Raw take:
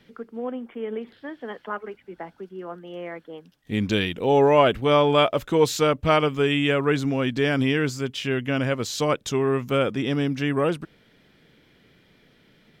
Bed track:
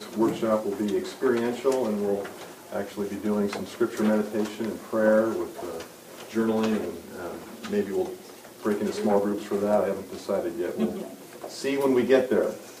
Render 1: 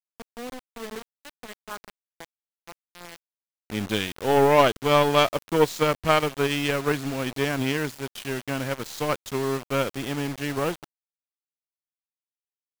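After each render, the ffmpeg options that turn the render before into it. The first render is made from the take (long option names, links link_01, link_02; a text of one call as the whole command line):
ffmpeg -i in.wav -af "aeval=exprs='0.596*(cos(1*acos(clip(val(0)/0.596,-1,1)))-cos(1*PI/2))+0.0075*(cos(6*acos(clip(val(0)/0.596,-1,1)))-cos(6*PI/2))+0.0531*(cos(7*acos(clip(val(0)/0.596,-1,1)))-cos(7*PI/2))+0.0168*(cos(8*acos(clip(val(0)/0.596,-1,1)))-cos(8*PI/2))':channel_layout=same,acrusher=bits=5:mix=0:aa=0.000001" out.wav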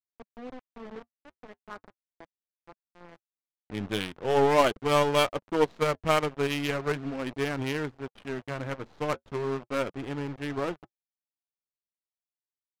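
ffmpeg -i in.wav -af "flanger=delay=2.1:depth=4.6:regen=-58:speed=0.39:shape=sinusoidal,adynamicsmooth=sensitivity=5.5:basefreq=690" out.wav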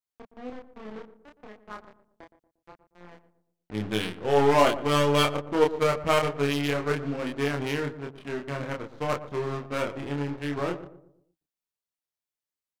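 ffmpeg -i in.wav -filter_complex "[0:a]asplit=2[link_01][link_02];[link_02]adelay=28,volume=-3dB[link_03];[link_01][link_03]amix=inputs=2:normalize=0,asplit=2[link_04][link_05];[link_05]adelay=117,lowpass=frequency=870:poles=1,volume=-11.5dB,asplit=2[link_06][link_07];[link_07]adelay=117,lowpass=frequency=870:poles=1,volume=0.45,asplit=2[link_08][link_09];[link_09]adelay=117,lowpass=frequency=870:poles=1,volume=0.45,asplit=2[link_10][link_11];[link_11]adelay=117,lowpass=frequency=870:poles=1,volume=0.45,asplit=2[link_12][link_13];[link_13]adelay=117,lowpass=frequency=870:poles=1,volume=0.45[link_14];[link_04][link_06][link_08][link_10][link_12][link_14]amix=inputs=6:normalize=0" out.wav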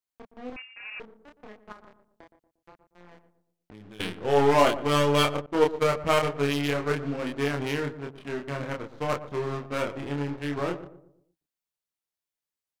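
ffmpeg -i in.wav -filter_complex "[0:a]asettb=1/sr,asplit=3[link_01][link_02][link_03];[link_01]atrim=end=0.564[link_04];[link_02]atrim=start=0.56:end=1,asetpts=PTS-STARTPTS,afade=type=in:duration=0.004:curve=qsin,afade=type=out:start_time=0.436:duration=0.004:curve=qsin,lowpass=frequency=2400:width_type=q:width=0.5098,lowpass=frequency=2400:width_type=q:width=0.6013,lowpass=frequency=2400:width_type=q:width=0.9,lowpass=frequency=2400:width_type=q:width=2.563,afreqshift=-2800[link_05];[link_03]atrim=start=0.996[link_06];[link_04][link_05]acrossfade=duration=0.004:curve1=hsin:curve2=qsin[link_07];[link_07][link_06]acrossfade=duration=0.004:curve1=qsin:curve2=hsin,asettb=1/sr,asplit=3[link_08][link_09][link_10];[link_08]atrim=end=1.724[link_11];[link_09]atrim=start=1.72:end=4,asetpts=PTS-STARTPTS,afade=type=in:duration=0.004:curve=qsin,afade=type=out:start_time=2.276:duration=0.004:curve=qsin,acompressor=threshold=-44dB:ratio=6:attack=3.2:release=140:knee=1:detection=peak[link_12];[link_10]atrim=start=3.996[link_13];[link_11][link_12]acrossfade=duration=0.004:curve1=hsin:curve2=qsin[link_14];[link_14][link_13]acrossfade=duration=0.004:curve1=qsin:curve2=hsin,asettb=1/sr,asplit=3[link_15][link_16][link_17];[link_15]atrim=end=5.464[link_18];[link_16]atrim=start=5.46:end=5.99,asetpts=PTS-STARTPTS,afade=type=in:duration=0.004:curve=qsin,afade=type=out:start_time=0.526:duration=0.004:curve=qsin,agate=range=-33dB:threshold=-30dB:ratio=3:release=100:detection=peak[link_19];[link_17]atrim=start=5.986[link_20];[link_18][link_19]acrossfade=duration=0.004:curve1=hsin:curve2=qsin[link_21];[link_21][link_20]acrossfade=duration=0.004:curve1=qsin:curve2=hsin" out.wav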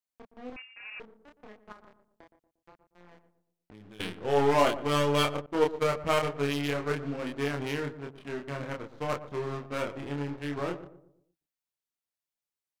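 ffmpeg -i in.wav -af "volume=-3.5dB" out.wav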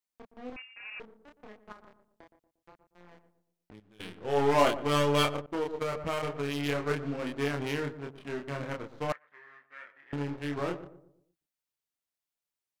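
ffmpeg -i in.wav -filter_complex "[0:a]asettb=1/sr,asplit=3[link_01][link_02][link_03];[link_01]atrim=end=5.324[link_04];[link_02]atrim=start=5.32:end=6.66,asetpts=PTS-STARTPTS,afade=type=in:duration=0.004:curve=qsin,afade=type=out:start_time=1.336:duration=0.004:curve=qsin,acompressor=threshold=-27dB:ratio=5:attack=3.2:release=140:knee=1:detection=peak[link_05];[link_03]atrim=start=6.656[link_06];[link_04][link_05]acrossfade=duration=0.004:curve1=hsin:curve2=qsin[link_07];[link_07][link_06]acrossfade=duration=0.004:curve1=qsin:curve2=hsin,asettb=1/sr,asplit=3[link_08][link_09][link_10];[link_08]atrim=end=9.124[link_11];[link_09]atrim=start=9.12:end=10.13,asetpts=PTS-STARTPTS,afade=type=in:duration=0.004:curve=qsin,afade=type=out:start_time=1.006:duration=0.004:curve=qsin,bandpass=frequency=1800:width_type=q:width=7.5[link_12];[link_10]atrim=start=10.126[link_13];[link_11][link_12]acrossfade=duration=0.004:curve1=hsin:curve2=qsin[link_14];[link_14][link_13]acrossfade=duration=0.004:curve1=qsin:curve2=hsin,asplit=2[link_15][link_16];[link_15]atrim=end=3.8,asetpts=PTS-STARTPTS,afade=type=out:start_time=3.796:duration=0.004:curve=hsin:silence=0.188365[link_17];[link_16]atrim=start=3.8,asetpts=PTS-STARTPTS,afade=type=in:duration=0.82:silence=0.188365[link_18];[link_17][link_18]concat=n=2:v=0:a=1" out.wav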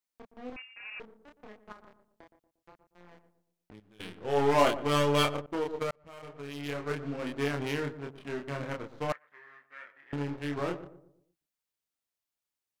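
ffmpeg -i in.wav -filter_complex "[0:a]asplit=2[link_01][link_02];[link_01]atrim=end=5.91,asetpts=PTS-STARTPTS,afade=type=out:start_time=5.906:duration=0.004:curve=hsin[link_03];[link_02]atrim=start=5.91,asetpts=PTS-STARTPTS,afade=type=in:duration=1.47[link_04];[link_03][link_04]concat=n=2:v=0:a=1" out.wav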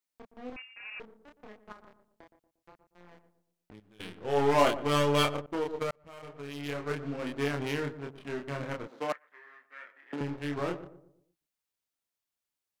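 ffmpeg -i in.wav -filter_complex "[0:a]asettb=1/sr,asplit=3[link_01][link_02][link_03];[link_01]atrim=end=8.874[link_04];[link_02]atrim=start=8.87:end=10.21,asetpts=PTS-STARTPTS,afade=type=in:duration=0.004:curve=qsin,afade=type=out:start_time=1.336:duration=0.004:curve=qsin,highpass=frequency=210:width=0.5412,highpass=frequency=210:width=1.3066[link_05];[link_03]atrim=start=10.206[link_06];[link_04][link_05]acrossfade=duration=0.004:curve1=hsin:curve2=qsin[link_07];[link_07][link_06]acrossfade=duration=0.004:curve1=qsin:curve2=hsin" out.wav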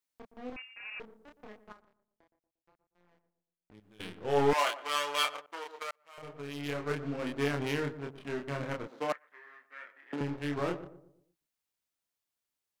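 ffmpeg -i in.wav -filter_complex "[0:a]asettb=1/sr,asplit=3[link_01][link_02][link_03];[link_01]atrim=end=4.534[link_04];[link_02]atrim=start=4.53:end=6.18,asetpts=PTS-STARTPTS,afade=type=in:duration=0.004:curve=qsin,afade=type=out:start_time=1.646:duration=0.004:curve=qsin,highpass=1000[link_05];[link_03]atrim=start=6.176[link_06];[link_04][link_05]acrossfade=duration=0.004:curve1=hsin:curve2=qsin[link_07];[link_07][link_06]acrossfade=duration=0.004:curve1=qsin:curve2=hsin,asplit=3[link_08][link_09][link_10];[link_08]atrim=end=1.86,asetpts=PTS-STARTPTS,afade=type=out:start_time=1.61:duration=0.25:silence=0.211349[link_11];[link_09]atrim=start=1.86:end=3.64,asetpts=PTS-STARTPTS,volume=-13.5dB[link_12];[link_10]atrim=start=3.64,asetpts=PTS-STARTPTS,afade=type=in:duration=0.25:silence=0.211349[link_13];[link_11][link_12][link_13]concat=n=3:v=0:a=1" out.wav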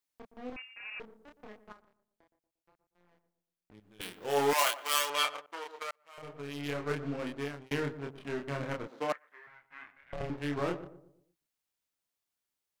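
ffmpeg -i in.wav -filter_complex "[0:a]asettb=1/sr,asplit=3[link_01][link_02][link_03];[link_01]atrim=end=4.014[link_04];[link_02]atrim=start=4.01:end=5.1,asetpts=PTS-STARTPTS,afade=type=in:duration=0.004:curve=qsin,afade=type=out:start_time=1.086:duration=0.004:curve=qsin,aemphasis=mode=production:type=bsi[link_05];[link_03]atrim=start=5.096[link_06];[link_04][link_05]acrossfade=duration=0.004:curve1=hsin:curve2=qsin[link_07];[link_07][link_06]acrossfade=duration=0.004:curve1=qsin:curve2=hsin,asettb=1/sr,asplit=3[link_08][link_09][link_10];[link_08]atrim=end=9.474[link_11];[link_09]atrim=start=9.47:end=10.3,asetpts=PTS-STARTPTS,afade=type=in:duration=0.004:curve=qsin,afade=type=out:start_time=0.826:duration=0.004:curve=qsin,aeval=exprs='val(0)*sin(2*PI*270*n/s)':channel_layout=same[link_12];[link_10]atrim=start=10.296[link_13];[link_11][link_12]acrossfade=duration=0.004:curve1=hsin:curve2=qsin[link_14];[link_14][link_13]acrossfade=duration=0.004:curve1=qsin:curve2=hsin,asplit=2[link_15][link_16];[link_15]atrim=end=7.71,asetpts=PTS-STARTPTS,afade=type=out:start_time=7.15:duration=0.56[link_17];[link_16]atrim=start=7.71,asetpts=PTS-STARTPTS,afade=type=in:duration=0.004:curve=hsin[link_18];[link_17][link_18]concat=n=2:v=0:a=1" out.wav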